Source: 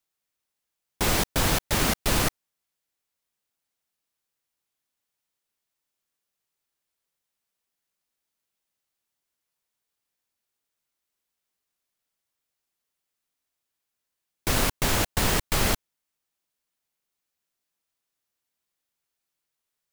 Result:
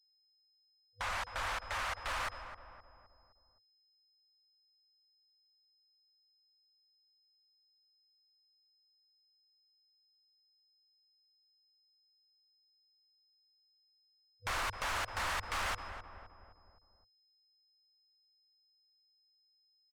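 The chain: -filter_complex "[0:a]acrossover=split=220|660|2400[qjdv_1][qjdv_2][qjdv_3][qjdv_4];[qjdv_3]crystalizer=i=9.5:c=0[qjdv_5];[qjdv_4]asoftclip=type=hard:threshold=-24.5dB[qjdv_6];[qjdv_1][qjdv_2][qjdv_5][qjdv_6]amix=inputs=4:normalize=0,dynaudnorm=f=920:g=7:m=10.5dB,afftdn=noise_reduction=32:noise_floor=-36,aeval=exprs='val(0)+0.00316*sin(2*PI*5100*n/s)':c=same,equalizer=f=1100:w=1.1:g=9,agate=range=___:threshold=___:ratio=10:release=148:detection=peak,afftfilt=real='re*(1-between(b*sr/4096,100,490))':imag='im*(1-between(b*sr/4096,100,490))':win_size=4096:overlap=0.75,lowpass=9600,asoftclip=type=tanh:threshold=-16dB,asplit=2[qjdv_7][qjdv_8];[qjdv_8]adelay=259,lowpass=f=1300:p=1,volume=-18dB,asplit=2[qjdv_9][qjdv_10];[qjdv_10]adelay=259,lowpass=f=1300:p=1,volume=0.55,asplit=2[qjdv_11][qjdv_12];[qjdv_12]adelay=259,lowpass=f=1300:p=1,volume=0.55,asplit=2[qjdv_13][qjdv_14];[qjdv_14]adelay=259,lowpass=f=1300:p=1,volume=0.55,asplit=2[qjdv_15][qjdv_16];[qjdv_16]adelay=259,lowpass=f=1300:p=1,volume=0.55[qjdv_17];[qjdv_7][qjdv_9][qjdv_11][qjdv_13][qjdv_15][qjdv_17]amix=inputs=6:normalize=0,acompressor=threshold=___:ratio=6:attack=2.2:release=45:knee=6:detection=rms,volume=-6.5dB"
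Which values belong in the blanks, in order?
-15dB, -42dB, -29dB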